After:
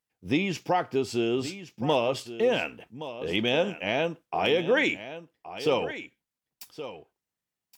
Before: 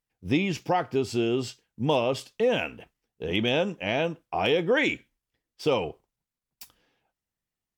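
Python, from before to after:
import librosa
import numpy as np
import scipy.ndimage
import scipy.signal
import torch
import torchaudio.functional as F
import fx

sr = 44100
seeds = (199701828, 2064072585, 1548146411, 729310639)

p1 = fx.highpass(x, sr, hz=160.0, slope=6)
y = p1 + fx.echo_single(p1, sr, ms=1121, db=-13.0, dry=0)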